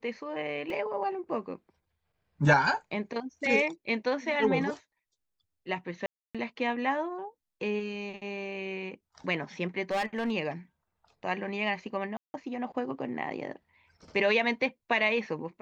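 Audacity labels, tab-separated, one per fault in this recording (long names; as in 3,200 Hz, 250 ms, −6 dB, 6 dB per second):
0.700000	0.700000	drop-out 2.4 ms
6.060000	6.350000	drop-out 286 ms
9.910000	10.320000	clipping −25.5 dBFS
12.170000	12.340000	drop-out 170 ms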